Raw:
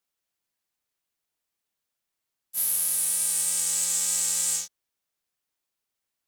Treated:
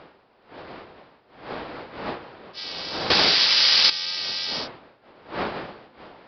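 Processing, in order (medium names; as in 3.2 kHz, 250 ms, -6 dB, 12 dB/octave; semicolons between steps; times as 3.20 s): wind noise 570 Hz -36 dBFS; 3.10–3.90 s: waveshaping leveller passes 5; resampled via 11.025 kHz; tilt EQ +4 dB/octave; trim +3 dB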